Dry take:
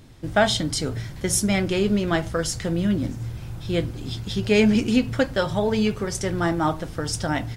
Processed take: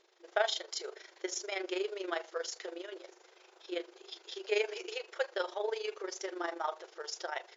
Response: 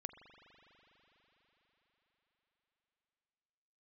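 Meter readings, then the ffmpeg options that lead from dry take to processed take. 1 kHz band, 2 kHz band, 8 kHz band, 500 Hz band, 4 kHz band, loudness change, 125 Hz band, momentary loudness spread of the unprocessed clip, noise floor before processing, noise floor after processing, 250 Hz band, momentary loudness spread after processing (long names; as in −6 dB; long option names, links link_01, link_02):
−11.5 dB, −11.0 dB, −15.0 dB, −11.5 dB, −11.0 dB, −14.0 dB, below −40 dB, 10 LU, −37 dBFS, −65 dBFS, −24.5 dB, 12 LU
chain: -af "afftfilt=real='re*between(b*sr/4096,340,7300)':imag='im*between(b*sr/4096,340,7300)':win_size=4096:overlap=0.75,tremolo=f=25:d=0.71,volume=-8dB"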